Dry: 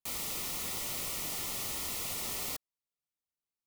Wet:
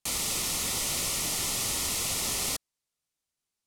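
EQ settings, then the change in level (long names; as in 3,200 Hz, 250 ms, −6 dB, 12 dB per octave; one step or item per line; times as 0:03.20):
low-pass filter 9,500 Hz 12 dB per octave
low-shelf EQ 240 Hz +3.5 dB
high-shelf EQ 4,400 Hz +8 dB
+5.5 dB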